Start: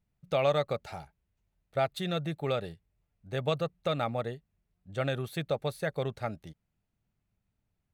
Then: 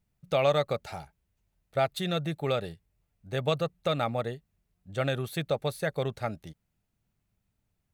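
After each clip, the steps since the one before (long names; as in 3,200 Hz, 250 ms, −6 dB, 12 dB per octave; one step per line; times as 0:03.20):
high-shelf EQ 5,100 Hz +4 dB
level +2 dB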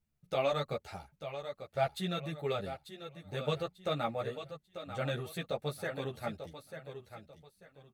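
repeating echo 892 ms, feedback 30%, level −10 dB
string-ensemble chorus
level −3 dB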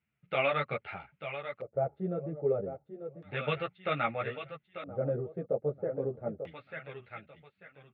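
loudspeaker in its box 110–3,500 Hz, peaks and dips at 120 Hz +4 dB, 1,400 Hz +7 dB, 2,100 Hz +6 dB
auto-filter low-pass square 0.31 Hz 490–2,700 Hz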